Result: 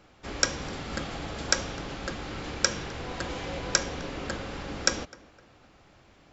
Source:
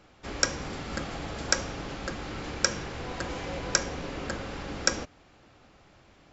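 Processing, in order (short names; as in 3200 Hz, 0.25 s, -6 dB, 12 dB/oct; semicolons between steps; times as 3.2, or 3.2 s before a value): on a send: tape echo 0.254 s, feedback 38%, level -20 dB, low-pass 2500 Hz; on the sum: dynamic EQ 3500 Hz, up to +4 dB, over -48 dBFS, Q 2.1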